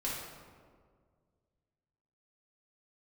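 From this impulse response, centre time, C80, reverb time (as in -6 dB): 86 ms, 2.5 dB, 1.9 s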